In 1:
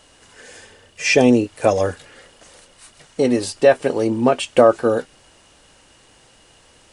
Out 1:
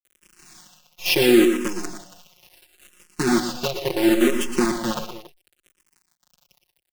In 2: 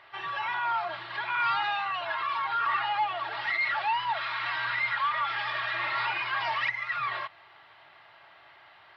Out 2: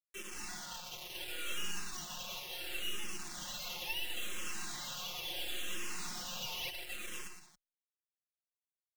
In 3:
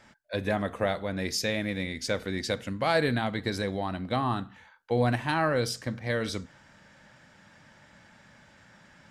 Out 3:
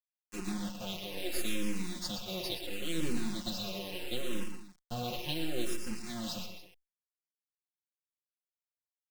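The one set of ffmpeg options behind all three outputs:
-filter_complex "[0:a]highpass=240,lowshelf=f=310:g=4.5,bandreject=f=5.9k:w=11,aeval=exprs='val(0)+0.00447*sin(2*PI*2700*n/s)':c=same,firequalizer=gain_entry='entry(360,0);entry(560,-22);entry(860,-22);entry(2000,-19);entry(2800,1);entry(6800,0);entry(10000,-26)':delay=0.05:min_phase=1,acrusher=bits=4:dc=4:mix=0:aa=0.000001,aecho=1:1:5.6:0.98,asplit=2[a][b];[b]aecho=0:1:108|119|122|185|279:0.158|0.376|0.119|0.141|0.158[c];[a][c]amix=inputs=2:normalize=0,asplit=2[d][e];[e]afreqshift=-0.72[f];[d][f]amix=inputs=2:normalize=1"

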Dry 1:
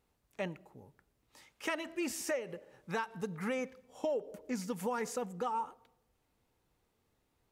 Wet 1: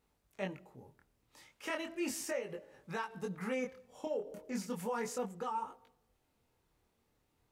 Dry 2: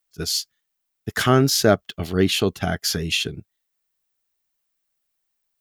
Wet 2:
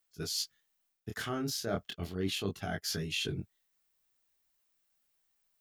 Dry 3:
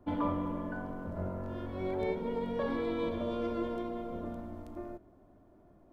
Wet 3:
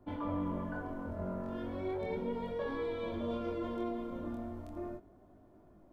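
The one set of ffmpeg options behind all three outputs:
-af "areverse,acompressor=threshold=-33dB:ratio=6,areverse,flanger=delay=19:depth=7.5:speed=0.36,volume=3dB"

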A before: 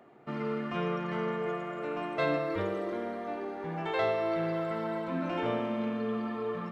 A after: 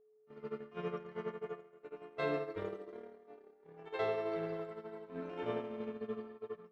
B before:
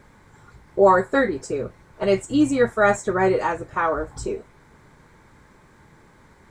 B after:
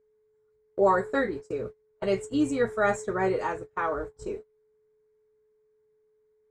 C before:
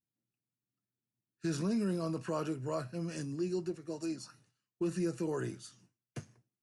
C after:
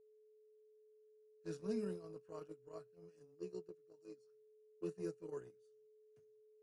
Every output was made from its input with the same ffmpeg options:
-af "aeval=exprs='val(0)+0.0316*sin(2*PI*430*n/s)':c=same,agate=range=-28dB:threshold=-28dB:ratio=16:detection=peak,volume=-7dB"

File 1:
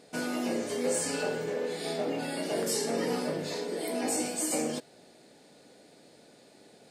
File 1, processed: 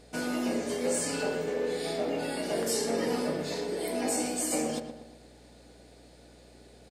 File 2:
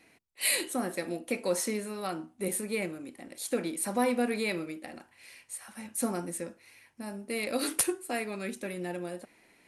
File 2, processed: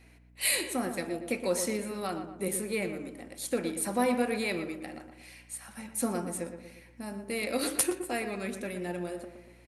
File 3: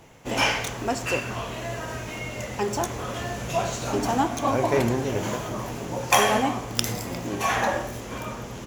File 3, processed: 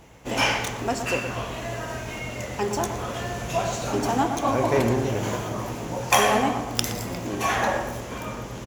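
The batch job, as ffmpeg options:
-filter_complex "[0:a]asplit=2[a][b];[b]adelay=118,lowpass=f=2k:p=1,volume=-8dB,asplit=2[c][d];[d]adelay=118,lowpass=f=2k:p=1,volume=0.5,asplit=2[e][f];[f]adelay=118,lowpass=f=2k:p=1,volume=0.5,asplit=2[g][h];[h]adelay=118,lowpass=f=2k:p=1,volume=0.5,asplit=2[i][j];[j]adelay=118,lowpass=f=2k:p=1,volume=0.5,asplit=2[k][l];[l]adelay=118,lowpass=f=2k:p=1,volume=0.5[m];[a][c][e][g][i][k][m]amix=inputs=7:normalize=0,aeval=exprs='val(0)+0.00141*(sin(2*PI*60*n/s)+sin(2*PI*2*60*n/s)/2+sin(2*PI*3*60*n/s)/3+sin(2*PI*4*60*n/s)/4+sin(2*PI*5*60*n/s)/5)':c=same"

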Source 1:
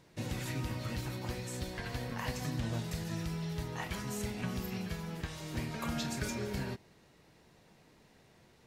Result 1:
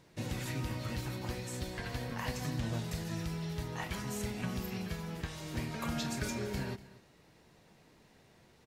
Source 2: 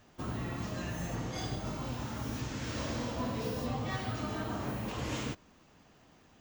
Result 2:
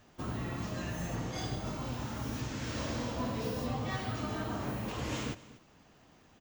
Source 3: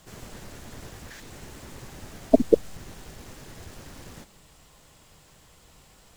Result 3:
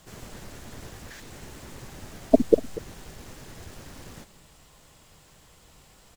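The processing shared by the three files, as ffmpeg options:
-af "aecho=1:1:241:0.119"

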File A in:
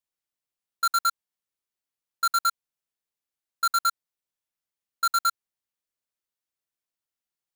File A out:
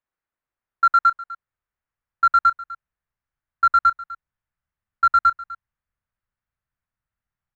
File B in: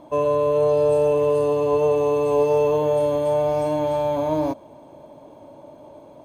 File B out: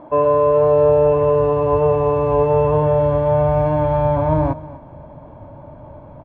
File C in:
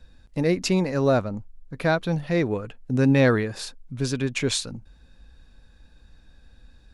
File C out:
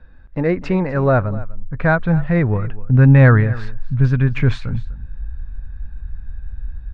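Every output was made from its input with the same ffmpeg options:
-af "asubboost=boost=11:cutoff=110,lowpass=f=1.6k:t=q:w=1.6,aecho=1:1:250:0.119,volume=4.5dB"

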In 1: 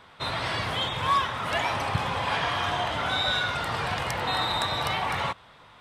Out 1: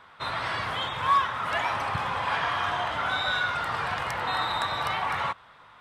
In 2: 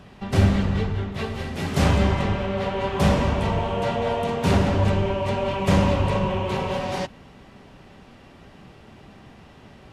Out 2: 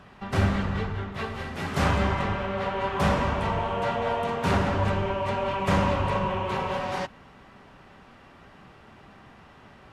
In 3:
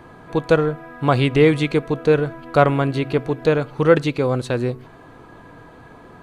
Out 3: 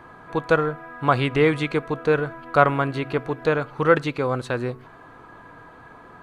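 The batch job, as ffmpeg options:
-af "equalizer=f=1.3k:w=0.85:g=8.5,volume=-6dB"

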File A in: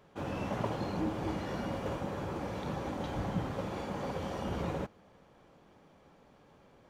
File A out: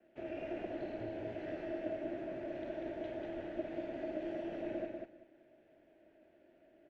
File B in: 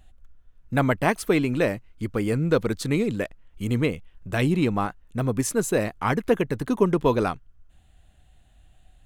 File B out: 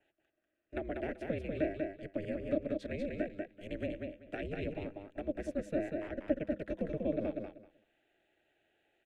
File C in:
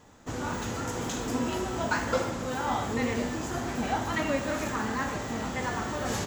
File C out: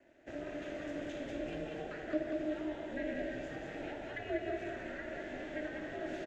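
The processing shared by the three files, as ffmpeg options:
-filter_complex "[0:a]highpass=130,bandreject=f=205.4:t=h:w=4,bandreject=f=410.8:t=h:w=4,adynamicequalizer=threshold=0.00141:dfrequency=3500:dqfactor=8:tfrequency=3500:tqfactor=8:attack=5:release=100:ratio=0.375:range=2.5:mode=boostabove:tftype=bell,acrossover=split=320[a][b];[b]acompressor=threshold=-34dB:ratio=6[c];[a][c]amix=inputs=2:normalize=0,asplit=3[d][e][f];[d]bandpass=f=530:t=q:w=8,volume=0dB[g];[e]bandpass=f=1.84k:t=q:w=8,volume=-6dB[h];[f]bandpass=f=2.48k:t=q:w=8,volume=-9dB[i];[g][h][i]amix=inputs=3:normalize=0,afreqshift=-55,aeval=exprs='val(0)*sin(2*PI*150*n/s)':c=same,asplit=2[j][k];[k]aecho=0:1:192|384|576:0.631|0.114|0.0204[l];[j][l]amix=inputs=2:normalize=0,volume=6.5dB"

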